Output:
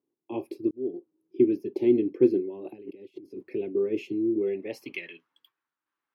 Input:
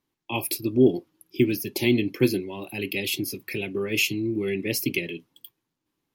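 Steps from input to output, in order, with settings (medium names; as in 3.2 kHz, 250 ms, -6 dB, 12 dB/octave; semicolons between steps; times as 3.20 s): 2.49–3.43 s: compressor with a negative ratio -41 dBFS, ratio -1; band-pass sweep 380 Hz -> 1.4 kHz, 4.35–5.04 s; 0.71–1.50 s: fade in; trim +3.5 dB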